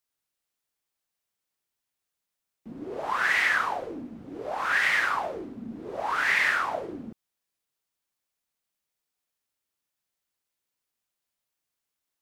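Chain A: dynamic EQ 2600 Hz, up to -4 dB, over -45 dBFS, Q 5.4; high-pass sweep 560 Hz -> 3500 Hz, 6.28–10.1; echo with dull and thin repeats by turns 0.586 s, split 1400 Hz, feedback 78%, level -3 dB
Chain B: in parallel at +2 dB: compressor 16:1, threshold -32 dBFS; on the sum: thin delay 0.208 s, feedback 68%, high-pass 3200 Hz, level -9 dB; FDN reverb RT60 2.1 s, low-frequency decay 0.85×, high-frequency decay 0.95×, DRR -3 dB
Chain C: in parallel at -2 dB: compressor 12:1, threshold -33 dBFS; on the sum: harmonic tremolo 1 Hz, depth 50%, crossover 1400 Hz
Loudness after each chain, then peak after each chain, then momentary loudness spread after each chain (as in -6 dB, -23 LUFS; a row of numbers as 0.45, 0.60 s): -25.5, -19.5, -26.5 LUFS; -10.5, -4.5, -11.0 dBFS; 20, 13, 16 LU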